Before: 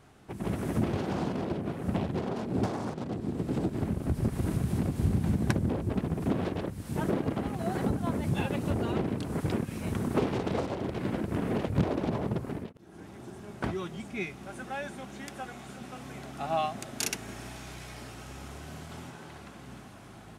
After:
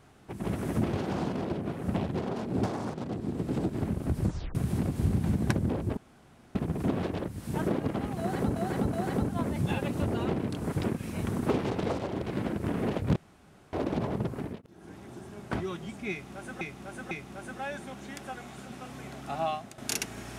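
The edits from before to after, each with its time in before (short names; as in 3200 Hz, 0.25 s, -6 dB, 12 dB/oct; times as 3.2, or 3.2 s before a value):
4.22 tape stop 0.33 s
5.97 insert room tone 0.58 s
7.61–7.98 loop, 3 plays
11.84 insert room tone 0.57 s
14.22–14.72 loop, 3 plays
16.47–16.89 fade out, to -10.5 dB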